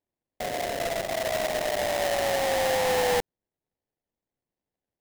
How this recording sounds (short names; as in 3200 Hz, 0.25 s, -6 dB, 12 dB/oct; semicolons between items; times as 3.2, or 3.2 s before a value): aliases and images of a low sample rate 1300 Hz, jitter 20%